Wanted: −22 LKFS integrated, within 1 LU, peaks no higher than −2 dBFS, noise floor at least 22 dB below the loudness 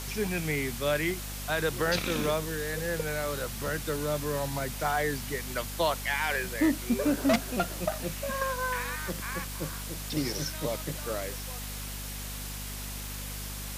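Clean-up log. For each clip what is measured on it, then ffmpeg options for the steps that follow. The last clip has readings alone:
mains hum 50 Hz; hum harmonics up to 250 Hz; level of the hum −38 dBFS; background noise floor −38 dBFS; target noise floor −53 dBFS; integrated loudness −31.0 LKFS; sample peak −16.0 dBFS; target loudness −22.0 LKFS
→ -af "bandreject=frequency=50:width_type=h:width=6,bandreject=frequency=100:width_type=h:width=6,bandreject=frequency=150:width_type=h:width=6,bandreject=frequency=200:width_type=h:width=6,bandreject=frequency=250:width_type=h:width=6"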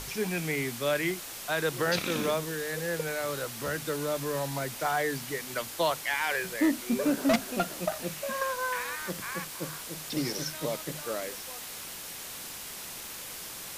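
mains hum none found; background noise floor −41 dBFS; target noise floor −54 dBFS
→ -af "afftdn=noise_reduction=13:noise_floor=-41"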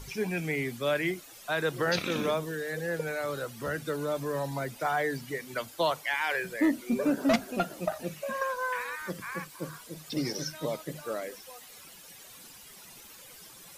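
background noise floor −51 dBFS; target noise floor −54 dBFS
→ -af "afftdn=noise_reduction=6:noise_floor=-51"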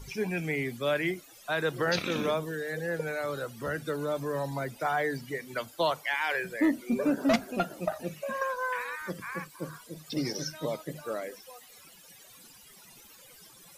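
background noise floor −54 dBFS; integrated loudness −31.5 LKFS; sample peak −16.5 dBFS; target loudness −22.0 LKFS
→ -af "volume=9.5dB"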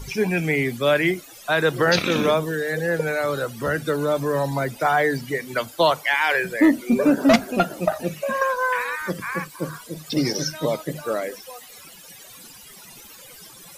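integrated loudness −22.0 LKFS; sample peak −7.0 dBFS; background noise floor −44 dBFS

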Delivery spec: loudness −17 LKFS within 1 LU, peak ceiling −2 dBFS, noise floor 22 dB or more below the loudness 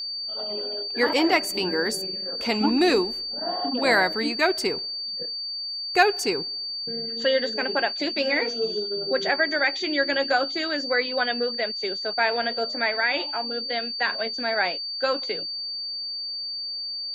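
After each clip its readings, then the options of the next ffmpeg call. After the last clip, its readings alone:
interfering tone 4,600 Hz; level of the tone −29 dBFS; integrated loudness −24.5 LKFS; sample peak −5.0 dBFS; target loudness −17.0 LKFS
→ -af "bandreject=frequency=4600:width=30"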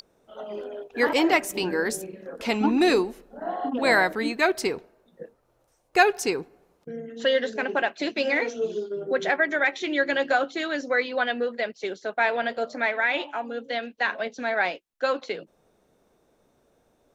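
interfering tone none found; integrated loudness −25.0 LKFS; sample peak −5.5 dBFS; target loudness −17.0 LKFS
→ -af "volume=8dB,alimiter=limit=-2dB:level=0:latency=1"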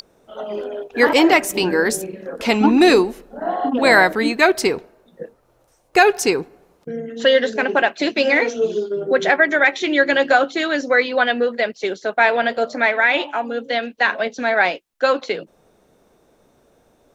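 integrated loudness −17.5 LKFS; sample peak −2.0 dBFS; background noise floor −59 dBFS

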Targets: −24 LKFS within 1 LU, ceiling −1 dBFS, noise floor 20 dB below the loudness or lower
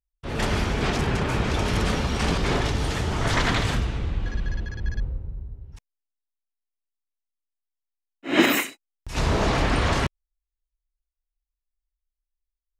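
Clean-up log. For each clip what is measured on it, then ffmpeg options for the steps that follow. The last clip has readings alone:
integrated loudness −25.0 LKFS; sample peak −5.0 dBFS; target loudness −24.0 LKFS
→ -af "volume=1dB"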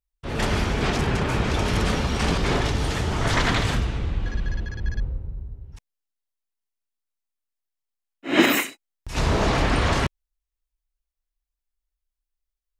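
integrated loudness −24.0 LKFS; sample peak −4.0 dBFS; background noise floor −85 dBFS

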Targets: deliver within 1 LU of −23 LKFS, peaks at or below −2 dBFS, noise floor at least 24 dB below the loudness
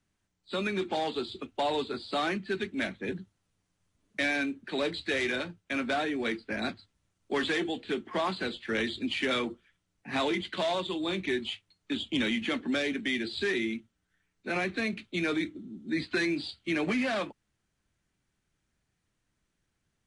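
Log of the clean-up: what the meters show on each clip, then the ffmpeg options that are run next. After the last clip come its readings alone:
integrated loudness −31.5 LKFS; sample peak −17.5 dBFS; target loudness −23.0 LKFS
→ -af "volume=8.5dB"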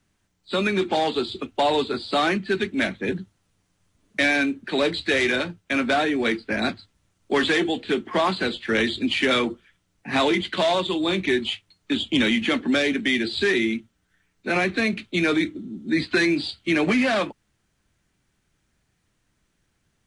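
integrated loudness −23.0 LKFS; sample peak −9.0 dBFS; background noise floor −71 dBFS

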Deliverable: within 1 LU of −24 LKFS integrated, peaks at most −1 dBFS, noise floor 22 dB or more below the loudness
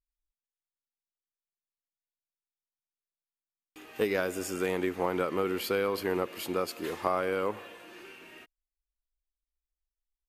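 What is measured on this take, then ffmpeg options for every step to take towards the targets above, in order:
integrated loudness −31.0 LKFS; sample peak −11.5 dBFS; target loudness −24.0 LKFS
→ -af "volume=7dB"

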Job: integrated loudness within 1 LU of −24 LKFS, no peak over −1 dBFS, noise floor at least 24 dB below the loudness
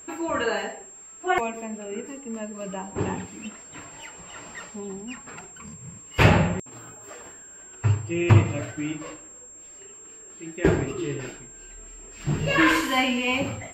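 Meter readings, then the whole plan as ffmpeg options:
interfering tone 7,500 Hz; level of the tone −43 dBFS; integrated loudness −25.0 LKFS; sample peak −4.5 dBFS; target loudness −24.0 LKFS
→ -af "bandreject=frequency=7500:width=30"
-af "volume=1dB"

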